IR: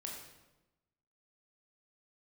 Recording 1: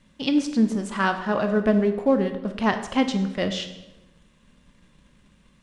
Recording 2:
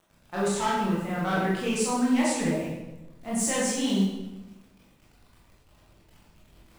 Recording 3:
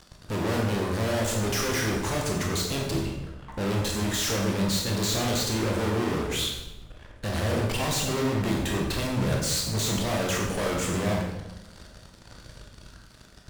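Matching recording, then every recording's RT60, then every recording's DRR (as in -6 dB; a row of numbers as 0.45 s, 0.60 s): 3; 1.0 s, 1.0 s, 1.0 s; 7.5 dB, -7.5 dB, -1.0 dB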